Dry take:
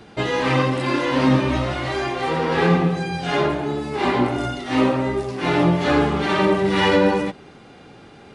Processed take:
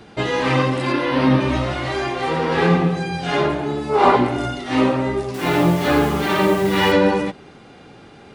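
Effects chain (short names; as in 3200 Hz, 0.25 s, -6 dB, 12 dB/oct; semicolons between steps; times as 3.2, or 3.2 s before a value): 0.92–1.41 bell 7100 Hz -12.5 dB 0.58 oct; 3.9–4.16 spectral gain 390–1500 Hz +9 dB; 5.34–6.92 requantised 6-bit, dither none; gain +1 dB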